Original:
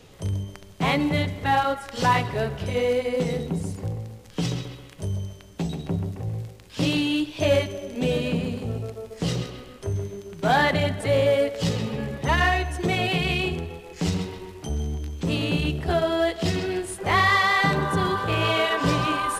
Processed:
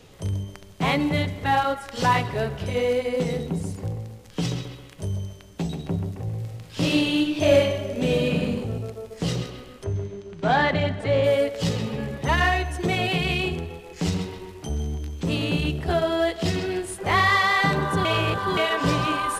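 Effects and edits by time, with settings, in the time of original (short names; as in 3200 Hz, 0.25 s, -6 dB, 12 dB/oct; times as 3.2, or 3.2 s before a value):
6.37–8.49 reverb throw, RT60 1 s, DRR 1 dB
9.84–11.24 air absorption 100 m
18.05–18.57 reverse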